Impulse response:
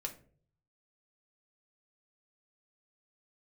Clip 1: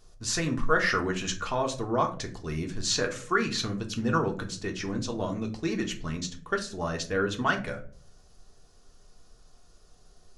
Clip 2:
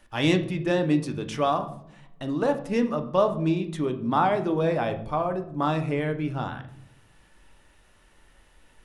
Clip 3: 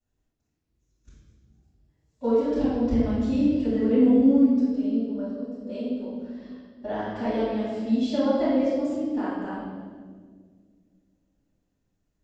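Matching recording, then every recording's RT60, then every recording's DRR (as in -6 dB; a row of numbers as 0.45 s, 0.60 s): 1; 0.50 s, 0.70 s, 1.7 s; 1.5 dB, 6.5 dB, -15.5 dB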